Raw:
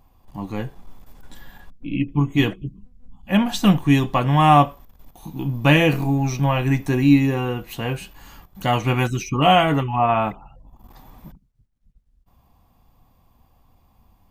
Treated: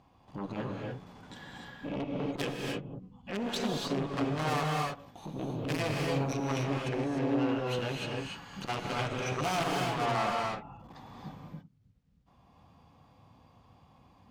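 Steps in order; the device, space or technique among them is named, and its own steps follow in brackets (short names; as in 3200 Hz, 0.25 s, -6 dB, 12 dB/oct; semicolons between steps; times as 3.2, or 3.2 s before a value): 1.99–2.42 dynamic EQ 3100 Hz, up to +6 dB, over -41 dBFS, Q 1.4; valve radio (BPF 110–5300 Hz; tube stage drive 27 dB, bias 0.3; core saturation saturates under 480 Hz); non-linear reverb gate 0.32 s rising, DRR -0.5 dB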